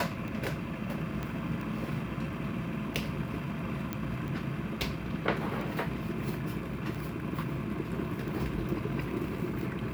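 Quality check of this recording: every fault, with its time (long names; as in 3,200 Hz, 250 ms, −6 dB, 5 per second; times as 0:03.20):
scratch tick 45 rpm
0:01.23: click −22 dBFS
0:03.93: click −19 dBFS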